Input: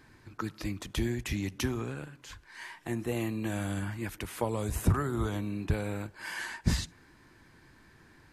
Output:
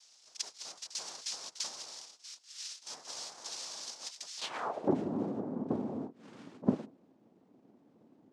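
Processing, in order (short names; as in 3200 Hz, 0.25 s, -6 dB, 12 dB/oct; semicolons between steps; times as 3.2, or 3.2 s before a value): pre-echo 47 ms -14 dB; noise vocoder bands 2; band-pass sweep 5300 Hz -> 250 Hz, 4.37–4.94; gain +5.5 dB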